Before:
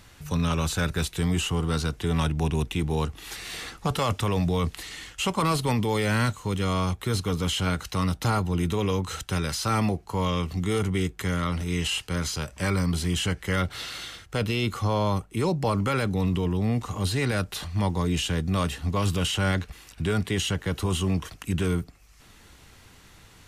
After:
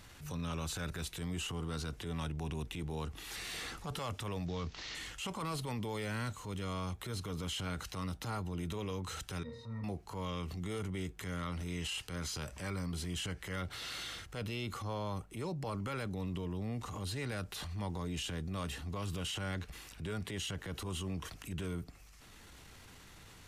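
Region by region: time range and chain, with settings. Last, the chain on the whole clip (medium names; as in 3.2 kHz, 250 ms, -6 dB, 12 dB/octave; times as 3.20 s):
4.46–4.95 s: CVSD coder 32 kbps + treble shelf 4.5 kHz +5.5 dB
9.43–9.84 s: pitch-class resonator A#, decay 0.16 s + flutter echo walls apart 8.5 m, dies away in 0.38 s
whole clip: compression 3:1, threshold -35 dBFS; transient shaper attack -7 dB, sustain +5 dB; trim -3.5 dB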